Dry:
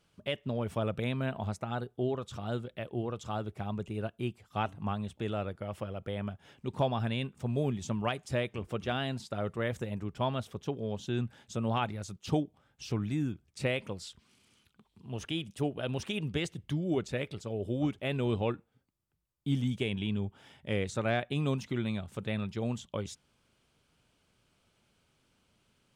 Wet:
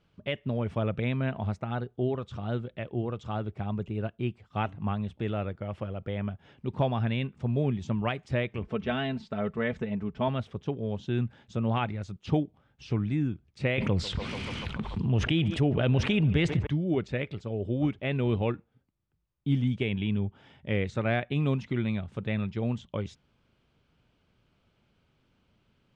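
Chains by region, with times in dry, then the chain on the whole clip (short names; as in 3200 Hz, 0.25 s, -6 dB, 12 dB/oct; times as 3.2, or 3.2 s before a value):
8.63–10.28 air absorption 60 m + comb 4.6 ms, depth 60%
13.78–16.67 low shelf 160 Hz +6.5 dB + narrowing echo 0.145 s, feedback 77%, band-pass 910 Hz, level -18 dB + fast leveller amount 70%
whole clip: dynamic EQ 2100 Hz, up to +5 dB, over -53 dBFS, Q 2.1; LPF 3800 Hz 12 dB/oct; low shelf 330 Hz +5.5 dB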